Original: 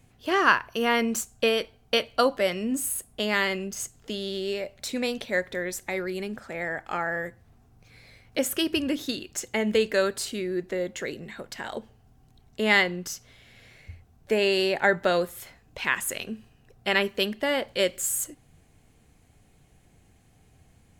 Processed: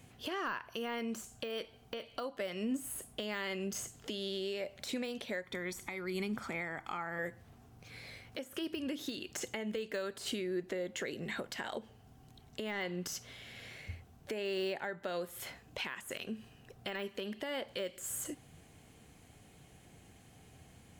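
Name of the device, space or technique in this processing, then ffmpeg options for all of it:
broadcast voice chain: -filter_complex "[0:a]highpass=f=110:p=1,deesser=0.8,acompressor=threshold=-35dB:ratio=5,equalizer=f=3.1k:t=o:w=0.23:g=3.5,alimiter=level_in=6dB:limit=-24dB:level=0:latency=1:release=341,volume=-6dB,asettb=1/sr,asplit=3[a][b][c];[a]atrim=end=5.444[d];[b]atrim=start=5.44:end=7.19,asetpts=PTS-STARTPTS,afade=t=in:d=0.004:c=qsin,afade=t=out:st=1.746:d=0.004:c=qsin,aecho=1:1:0.9:0.53,atrim=end_sample=77175[e];[c]atrim=start=7.186[f];[d][e]acrossfade=d=0.004:c1=hsin:c2=qsin[g];[g][f]acrossfade=d=0.004:c1=qsin:c2=hsin,volume=3dB"

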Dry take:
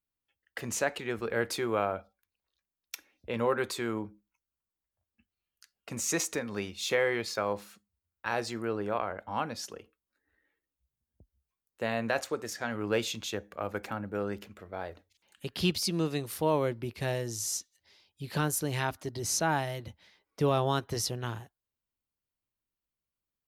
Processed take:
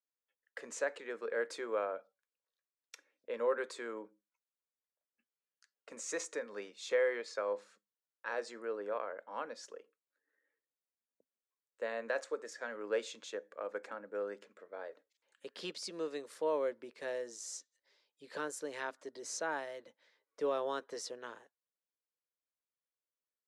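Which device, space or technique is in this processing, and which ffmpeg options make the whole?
phone speaker on a table: -filter_complex "[0:a]highpass=f=340:w=0.5412,highpass=f=340:w=1.3066,equalizer=f=350:t=q:w=4:g=-8,equalizer=f=510:t=q:w=4:g=4,equalizer=f=760:t=q:w=4:g=-9,equalizer=f=1.7k:t=q:w=4:g=4,equalizer=f=2.8k:t=q:w=4:g=-3,equalizer=f=7.6k:t=q:w=4:g=4,lowpass=f=9k:w=0.5412,lowpass=f=9k:w=1.3066,asettb=1/sr,asplit=3[a][b][c];[a]atrim=end=6.894[d];[b]atrim=start=6.89:end=8.43,asetpts=PTS-STARTPTS,afade=t=in:d=0.004:c=qsin,afade=t=out:st=1.536:d=0.004:c=qsin,lowpass=11k[e];[c]atrim=start=8.426[f];[d][e]acrossfade=d=0.004:c1=hsin:c2=qsin[g];[g][f]acrossfade=d=0.004:c1=qsin:c2=hsin,tiltshelf=f=1.3k:g=5,volume=-7.5dB"

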